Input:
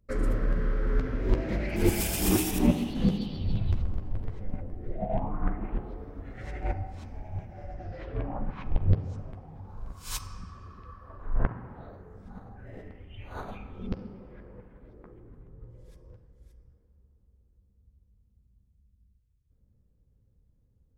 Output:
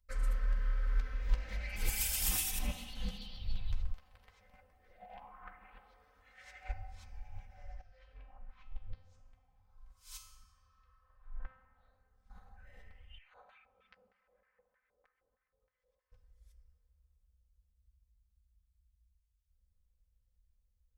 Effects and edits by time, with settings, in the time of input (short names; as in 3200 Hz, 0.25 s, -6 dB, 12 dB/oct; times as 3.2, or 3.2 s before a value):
3.93–6.69 HPF 590 Hz 6 dB/oct
7.81–12.3 resonator 130 Hz, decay 0.69 s, mix 80%
13.18–16.12 LFO band-pass square 3.2 Hz 560–1800 Hz
whole clip: passive tone stack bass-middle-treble 10-0-10; comb 3.9 ms, depth 84%; gain -4 dB